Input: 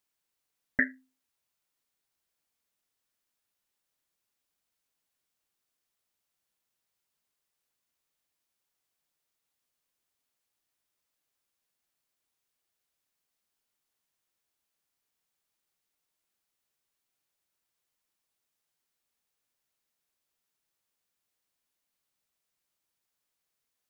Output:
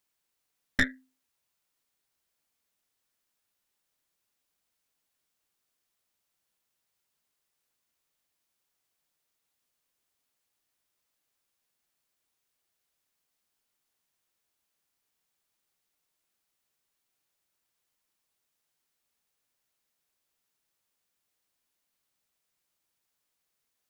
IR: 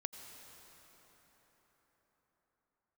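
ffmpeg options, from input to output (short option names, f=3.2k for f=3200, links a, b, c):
-af "aeval=exprs='(tanh(15.8*val(0)+0.8)-tanh(0.8))/15.8':c=same,volume=7.5dB"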